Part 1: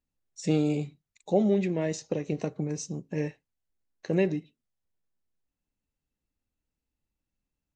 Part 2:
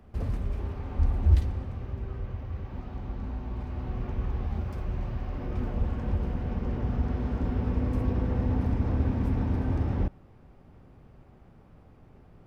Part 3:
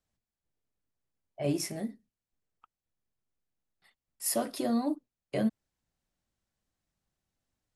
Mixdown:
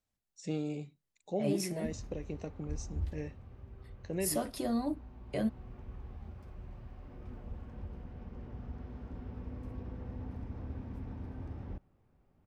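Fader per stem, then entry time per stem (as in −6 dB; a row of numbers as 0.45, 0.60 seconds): −10.5, −15.5, −3.5 decibels; 0.00, 1.70, 0.00 seconds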